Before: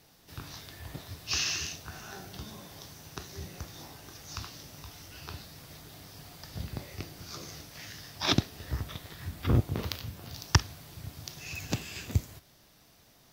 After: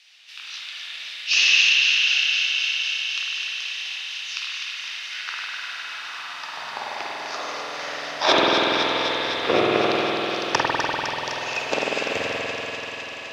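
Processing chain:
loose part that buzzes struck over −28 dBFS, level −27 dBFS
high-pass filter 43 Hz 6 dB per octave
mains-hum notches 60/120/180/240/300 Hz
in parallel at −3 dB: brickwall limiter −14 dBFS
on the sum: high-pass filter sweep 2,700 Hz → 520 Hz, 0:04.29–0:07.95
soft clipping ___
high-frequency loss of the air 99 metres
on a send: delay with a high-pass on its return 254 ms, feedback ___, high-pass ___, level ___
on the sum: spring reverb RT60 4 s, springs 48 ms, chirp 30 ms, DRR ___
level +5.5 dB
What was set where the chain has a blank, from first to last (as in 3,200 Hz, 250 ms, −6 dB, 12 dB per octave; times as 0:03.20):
−10 dBFS, 81%, 1,500 Hz, −6 dB, −5.5 dB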